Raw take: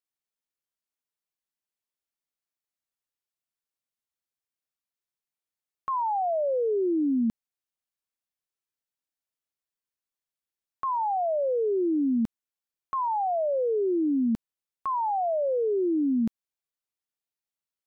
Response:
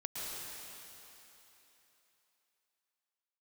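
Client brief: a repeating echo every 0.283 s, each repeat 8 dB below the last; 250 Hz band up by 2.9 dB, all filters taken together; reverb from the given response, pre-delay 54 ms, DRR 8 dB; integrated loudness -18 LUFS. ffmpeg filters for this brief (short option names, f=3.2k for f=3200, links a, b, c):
-filter_complex "[0:a]equalizer=f=250:t=o:g=3.5,aecho=1:1:283|566|849|1132|1415:0.398|0.159|0.0637|0.0255|0.0102,asplit=2[a][b];[1:a]atrim=start_sample=2205,adelay=54[c];[b][c]afir=irnorm=-1:irlink=0,volume=-10dB[d];[a][d]amix=inputs=2:normalize=0,volume=6.5dB"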